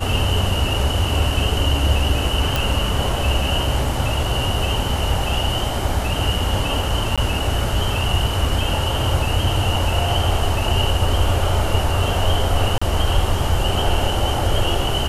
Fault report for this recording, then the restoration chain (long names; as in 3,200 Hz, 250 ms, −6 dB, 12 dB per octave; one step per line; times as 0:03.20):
0:02.56: click
0:07.16–0:07.18: drop-out 16 ms
0:12.78–0:12.81: drop-out 35 ms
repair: click removal
repair the gap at 0:07.16, 16 ms
repair the gap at 0:12.78, 35 ms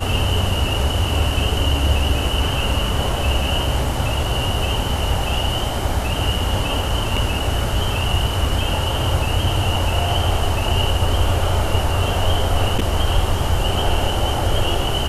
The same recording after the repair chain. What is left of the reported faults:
none of them is left